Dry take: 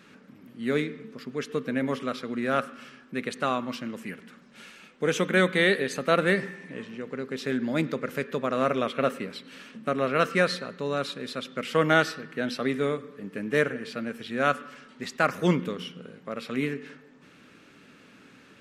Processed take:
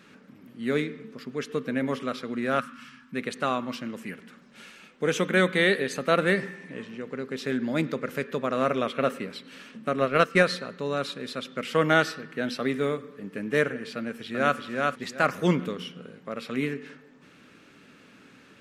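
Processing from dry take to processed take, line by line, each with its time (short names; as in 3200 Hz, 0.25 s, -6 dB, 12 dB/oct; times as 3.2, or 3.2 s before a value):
2.6–3.14 spectral gain 280–850 Hz -15 dB
9.96–10.43 transient shaper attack +6 dB, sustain -7 dB
12.41–13.19 short-mantissa float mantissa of 6-bit
13.96–14.57 echo throw 0.38 s, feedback 25%, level -2.5 dB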